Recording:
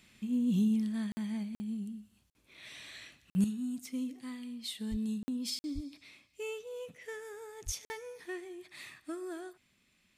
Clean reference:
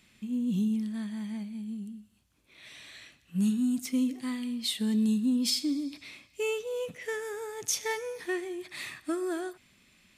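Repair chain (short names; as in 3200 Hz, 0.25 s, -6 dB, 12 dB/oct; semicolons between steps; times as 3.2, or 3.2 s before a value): de-plosive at 4.9/5.74/7.65; interpolate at 1.12/1.55/2.3/3.3/5.23/5.59/7.85, 50 ms; gain correction +9 dB, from 3.44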